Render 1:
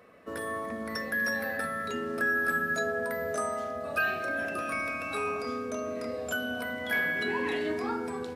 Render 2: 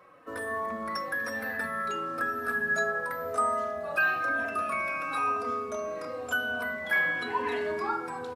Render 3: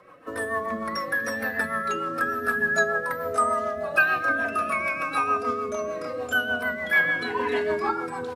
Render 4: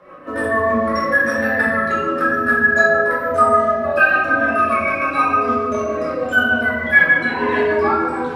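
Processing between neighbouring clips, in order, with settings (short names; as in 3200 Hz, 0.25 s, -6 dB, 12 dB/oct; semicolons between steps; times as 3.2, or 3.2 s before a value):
bell 1100 Hz +9 dB 1.1 oct; notches 50/100/150/200/250 Hz; endless flanger 3.2 ms -1 Hz
rotary speaker horn 6.7 Hz; gain +7.5 dB
high shelf 4300 Hz -12 dB; in parallel at -2 dB: vocal rider within 3 dB; on the sum: shoebox room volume 320 m³, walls mixed, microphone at 2.5 m; gain -3 dB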